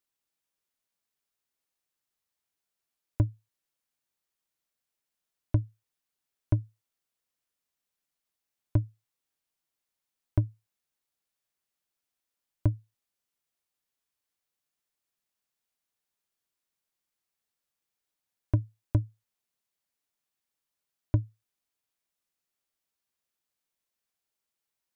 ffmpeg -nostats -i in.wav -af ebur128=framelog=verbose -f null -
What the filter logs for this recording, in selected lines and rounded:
Integrated loudness:
  I:         -32.0 LUFS
  Threshold: -43.0 LUFS
Loudness range:
  LRA:         3.0 LU
  Threshold: -58.9 LUFS
  LRA low:   -40.6 LUFS
  LRA high:  -37.6 LUFS